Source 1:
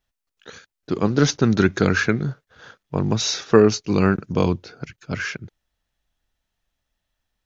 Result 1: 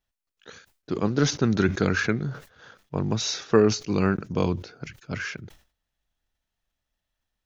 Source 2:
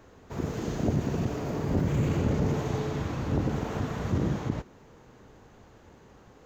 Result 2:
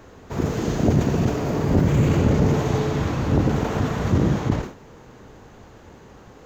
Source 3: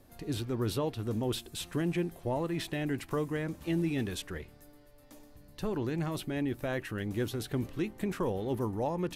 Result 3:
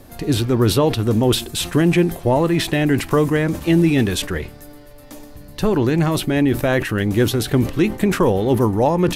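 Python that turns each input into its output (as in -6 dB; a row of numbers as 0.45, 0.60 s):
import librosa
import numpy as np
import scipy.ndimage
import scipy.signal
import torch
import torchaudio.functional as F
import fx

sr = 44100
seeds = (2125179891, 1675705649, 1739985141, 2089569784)

y = fx.sustainer(x, sr, db_per_s=140.0)
y = y * 10.0 ** (-6 / 20.0) / np.max(np.abs(y))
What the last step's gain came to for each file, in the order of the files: -5.0, +8.0, +16.0 dB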